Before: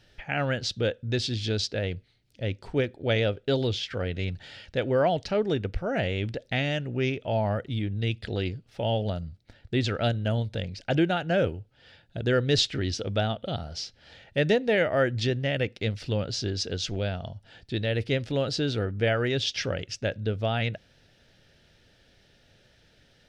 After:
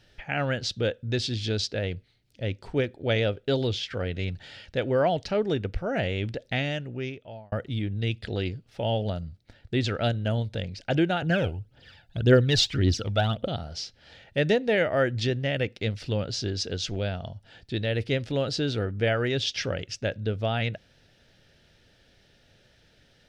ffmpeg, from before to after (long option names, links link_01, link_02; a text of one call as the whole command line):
ffmpeg -i in.wav -filter_complex "[0:a]asettb=1/sr,asplit=3[link_01][link_02][link_03];[link_01]atrim=end=11.224[link_04];[link_02]atrim=start=11.22:end=13.48,asetpts=PTS-STARTPTS,afade=type=in:duration=0.004:curve=qsin,afade=type=out:start_time=2.256:duration=0.004:curve=qsin,aphaser=in_gain=1:out_gain=1:delay=1.5:decay=0.62:speed=1.8:type=triangular[link_05];[link_03]atrim=start=13.476[link_06];[link_04][link_05]acrossfade=duration=0.004:curve1=hsin:curve2=qsin[link_07];[link_07][link_06]acrossfade=duration=0.004:curve1=qsin:curve2=hsin,asplit=2[link_08][link_09];[link_08]atrim=end=7.52,asetpts=PTS-STARTPTS,afade=type=out:start_time=6.54:duration=0.98[link_10];[link_09]atrim=start=7.52,asetpts=PTS-STARTPTS,afade=type=in:duration=0.004:curve=hsin[link_11];[link_10][link_11]concat=n=2:v=0:a=1" out.wav